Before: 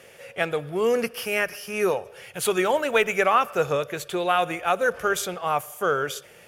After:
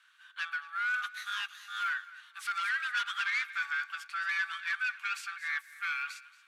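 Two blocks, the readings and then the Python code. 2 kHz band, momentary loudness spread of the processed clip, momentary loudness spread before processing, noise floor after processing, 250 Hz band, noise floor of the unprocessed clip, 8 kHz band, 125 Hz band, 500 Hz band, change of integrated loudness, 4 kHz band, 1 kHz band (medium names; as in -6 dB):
-2.5 dB, 7 LU, 7 LU, -61 dBFS, under -40 dB, -50 dBFS, -16.0 dB, under -40 dB, under -40 dB, -9.5 dB, -6.0 dB, -12.5 dB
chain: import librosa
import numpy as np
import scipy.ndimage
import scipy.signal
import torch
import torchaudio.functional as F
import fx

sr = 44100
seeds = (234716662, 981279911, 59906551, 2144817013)

p1 = 10.0 ** (-23.0 / 20.0) * np.tanh(x / 10.0 ** (-23.0 / 20.0))
p2 = scipy.signal.sosfilt(scipy.signal.butter(2, 9600.0, 'lowpass', fs=sr, output='sos'), p1)
p3 = fx.high_shelf(p2, sr, hz=4900.0, db=-8.0)
p4 = p3 + fx.echo_feedback(p3, sr, ms=227, feedback_pct=36, wet_db=-13.5, dry=0)
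p5 = p4 * np.sin(2.0 * np.pi * 1000.0 * np.arange(len(p4)) / sr)
p6 = scipy.signal.sosfilt(scipy.signal.butter(8, 1100.0, 'highpass', fs=sr, output='sos'), p5)
p7 = fx.peak_eq(p6, sr, hz=1800.0, db=2.5, octaves=0.77)
y = fx.upward_expand(p7, sr, threshold_db=-49.0, expansion=1.5)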